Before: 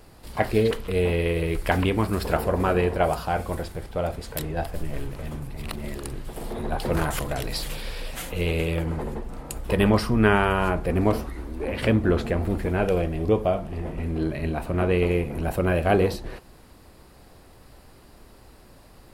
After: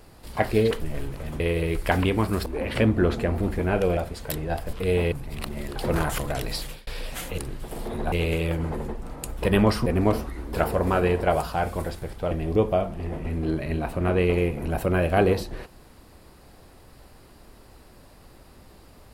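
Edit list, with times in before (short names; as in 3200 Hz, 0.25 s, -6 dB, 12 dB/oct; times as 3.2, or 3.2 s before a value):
0.81–1.2 swap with 4.8–5.39
2.26–4.04 swap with 11.53–13.04
6.03–6.77 move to 8.39
7.44–7.88 fade out equal-power
10.13–10.86 cut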